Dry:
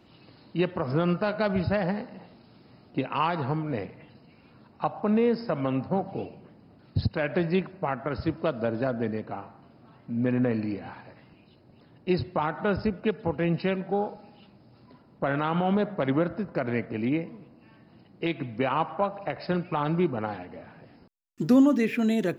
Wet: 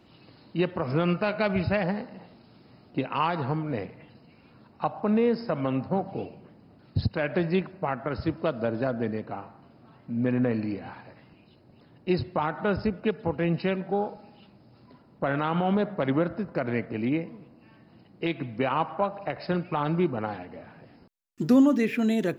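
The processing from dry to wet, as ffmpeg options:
ffmpeg -i in.wav -filter_complex "[0:a]asettb=1/sr,asplit=3[link_01][link_02][link_03];[link_01]atrim=end=0.824[link_04];[link_02]atrim=start=0.82:end=1.84,asetpts=PTS-STARTPTS,afade=type=in:duration=0.004:curve=qsin,afade=type=out:start_time=1.016:duration=0.004:curve=qsin,equalizer=frequency=2400:width=3:gain=8[link_05];[link_03]atrim=start=1.836[link_06];[link_04][link_05]acrossfade=duration=0.004:curve1=hsin:curve2=qsin[link_07];[link_07][link_06]acrossfade=duration=0.004:curve1=qsin:curve2=hsin" out.wav

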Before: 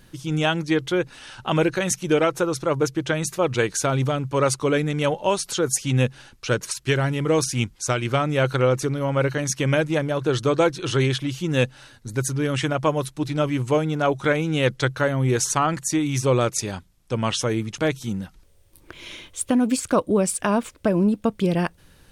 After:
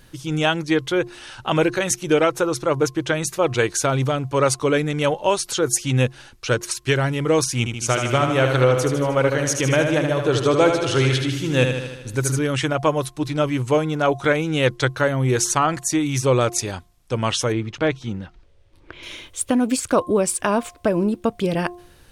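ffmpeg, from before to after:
ffmpeg -i in.wav -filter_complex "[0:a]asettb=1/sr,asplit=3[link_01][link_02][link_03];[link_01]atrim=end=7.584[link_04];[link_02]atrim=start=7.58:end=12.39,asetpts=PTS-STARTPTS,afade=type=in:duration=0.004:curve=qsin,afade=type=out:start_time=4.806:duration=0.004:curve=qsin,aecho=1:1:77|154|231|308|385|462|539|616:0.501|0.301|0.18|0.108|0.065|0.039|0.0234|0.014,atrim=end_sample=212121[link_05];[link_03]atrim=start=12.386[link_06];[link_04][link_05]acrossfade=duration=0.004:curve1=hsin:curve2=qsin[link_07];[link_07][link_06]acrossfade=duration=0.004:curve1=qsin:curve2=hsin,asettb=1/sr,asplit=3[link_08][link_09][link_10];[link_08]atrim=end=17.524[link_11];[link_09]atrim=start=17.52:end=19.03,asetpts=PTS-STARTPTS,afade=type=in:duration=0.004:curve=qsin,afade=type=out:start_time=1.506:duration=0.004:curve=qsin,lowpass=3700[link_12];[link_10]atrim=start=19.026[link_13];[link_11][link_12]acrossfade=duration=0.004:curve1=hsin:curve2=qsin[link_14];[link_14][link_13]acrossfade=duration=0.004:curve1=qsin:curve2=hsin,equalizer=frequency=190:width_type=o:width=0.62:gain=-5.5,bandreject=frequency=353.1:width_type=h:width=4,bandreject=frequency=706.2:width_type=h:width=4,bandreject=frequency=1059.3:width_type=h:width=4,volume=2.5dB" out.wav

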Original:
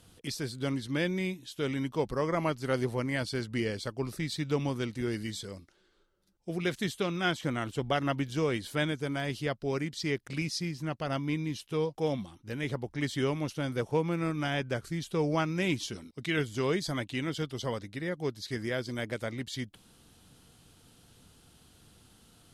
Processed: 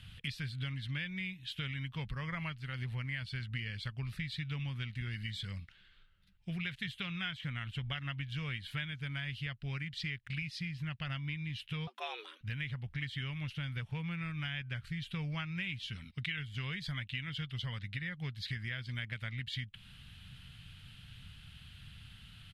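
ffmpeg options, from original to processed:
ffmpeg -i in.wav -filter_complex "[0:a]asettb=1/sr,asplit=3[link_01][link_02][link_03];[link_01]atrim=end=11.874[link_04];[link_02]atrim=start=11.87:end=12.41,asetpts=PTS-STARTPTS,afade=type=in:duration=0.004:curve=qsin,afade=type=out:start_time=0.536:duration=0.004:curve=qsin,afreqshift=230[link_05];[link_03]atrim=start=12.406[link_06];[link_04][link_05]acrossfade=duration=0.004:curve1=hsin:curve2=qsin[link_07];[link_07][link_06]acrossfade=duration=0.004:curve1=qsin:curve2=hsin,asplit=3[link_08][link_09][link_10];[link_08]atrim=end=2.71,asetpts=PTS-STARTPTS,afade=type=out:start_time=2.42:duration=0.29:silence=0.316228[link_11];[link_09]atrim=start=2.71:end=2.72,asetpts=PTS-STARTPTS,volume=-10dB[link_12];[link_10]atrim=start=2.72,asetpts=PTS-STARTPTS,afade=type=in:duration=0.29:silence=0.316228[link_13];[link_11][link_12][link_13]concat=n=3:v=0:a=1,firequalizer=gain_entry='entry(130,0);entry(330,-26);entry(1700,-1);entry(2800,3);entry(5900,-19);entry(11000,-17)':delay=0.05:min_phase=1,acompressor=threshold=-46dB:ratio=6,volume=9.5dB" out.wav

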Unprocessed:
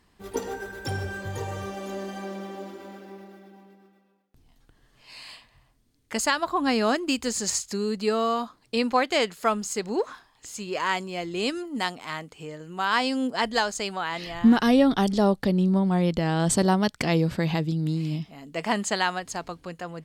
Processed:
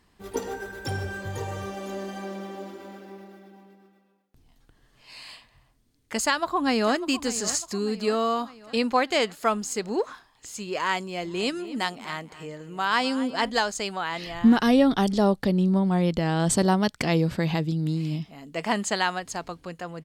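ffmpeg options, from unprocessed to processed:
ffmpeg -i in.wav -filter_complex "[0:a]asplit=2[link_01][link_02];[link_02]afade=type=in:start_time=6.24:duration=0.01,afade=type=out:start_time=6.95:duration=0.01,aecho=0:1:600|1200|1800|2400|3000:0.188365|0.103601|0.0569804|0.0313392|0.0172366[link_03];[link_01][link_03]amix=inputs=2:normalize=0,asplit=3[link_04][link_05][link_06];[link_04]afade=type=out:start_time=11.21:duration=0.02[link_07];[link_05]asplit=2[link_08][link_09];[link_09]adelay=246,lowpass=frequency=3300:poles=1,volume=-15dB,asplit=2[link_10][link_11];[link_11]adelay=246,lowpass=frequency=3300:poles=1,volume=0.27,asplit=2[link_12][link_13];[link_13]adelay=246,lowpass=frequency=3300:poles=1,volume=0.27[link_14];[link_08][link_10][link_12][link_14]amix=inputs=4:normalize=0,afade=type=in:start_time=11.21:duration=0.02,afade=type=out:start_time=13.49:duration=0.02[link_15];[link_06]afade=type=in:start_time=13.49:duration=0.02[link_16];[link_07][link_15][link_16]amix=inputs=3:normalize=0" out.wav

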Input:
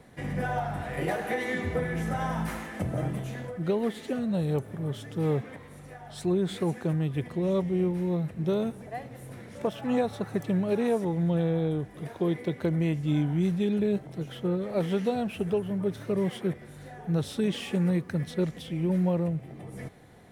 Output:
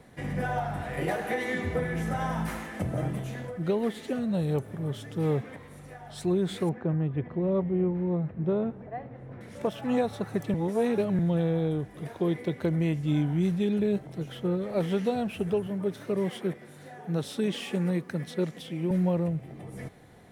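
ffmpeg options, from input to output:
ffmpeg -i in.wav -filter_complex "[0:a]asettb=1/sr,asplit=3[link_01][link_02][link_03];[link_01]atrim=end=6.694[link_04];[link_02]atrim=start=6.69:end=9.41,asetpts=PTS-STARTPTS,afade=type=in:duration=0.004:curve=qsin,afade=type=out:start_time=2.716:duration=0.004:curve=qsin,lowpass=1600[link_05];[link_03]atrim=start=9.406[link_06];[link_04][link_05]acrossfade=duration=0.004:curve1=hsin:curve2=qsin[link_07];[link_07][link_06]acrossfade=duration=0.004:curve1=qsin:curve2=hsin,asettb=1/sr,asplit=3[link_08][link_09][link_10];[link_08]atrim=end=15.674[link_11];[link_09]atrim=start=15.67:end=18.91,asetpts=PTS-STARTPTS,afade=type=in:duration=0.004:curve=qsin,afade=type=out:start_time=3.236:duration=0.004:curve=qsin,highpass=170[link_12];[link_10]atrim=start=18.906[link_13];[link_11][link_12]acrossfade=duration=0.004:curve1=hsin:curve2=qsin[link_14];[link_14][link_13]acrossfade=duration=0.004:curve1=qsin:curve2=hsin,asplit=3[link_15][link_16][link_17];[link_15]atrim=end=10.542[link_18];[link_16]atrim=start=10.538:end=11.192,asetpts=PTS-STARTPTS,areverse[link_19];[link_17]atrim=start=11.188[link_20];[link_18][link_19]acrossfade=duration=0.004:curve1=hsin:curve2=hsin[link_21];[link_21][link_20]acrossfade=duration=0.004:curve1=hsin:curve2=hsin" out.wav

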